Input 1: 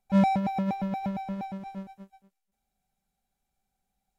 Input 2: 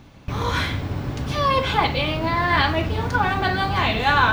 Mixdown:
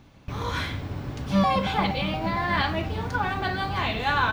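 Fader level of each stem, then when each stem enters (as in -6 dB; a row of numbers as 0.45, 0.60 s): -1.0, -6.0 dB; 1.20, 0.00 s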